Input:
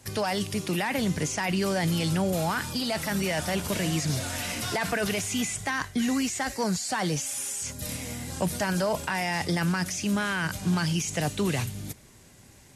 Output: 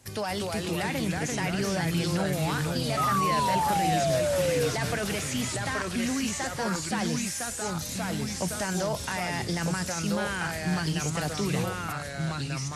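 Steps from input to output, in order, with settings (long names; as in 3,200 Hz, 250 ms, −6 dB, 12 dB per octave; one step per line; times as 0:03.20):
delay with pitch and tempo change per echo 224 ms, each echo −2 semitones, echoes 2
sound drawn into the spectrogram fall, 0:02.97–0:04.69, 460–1,300 Hz −23 dBFS
level −3.5 dB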